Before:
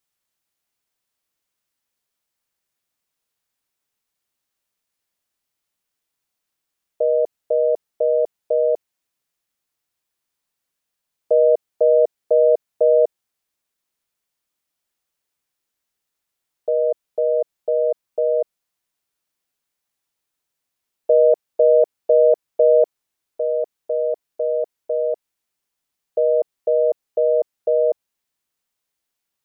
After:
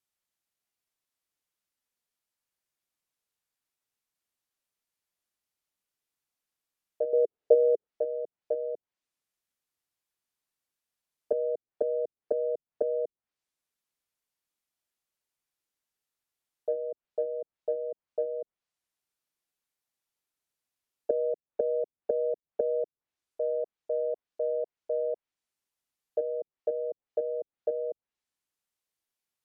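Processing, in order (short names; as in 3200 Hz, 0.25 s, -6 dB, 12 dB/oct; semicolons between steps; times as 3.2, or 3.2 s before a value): treble ducked by the level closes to 350 Hz, closed at -15.5 dBFS; 7.13–7.87 bell 430 Hz +13 dB 1 oct; gain -7.5 dB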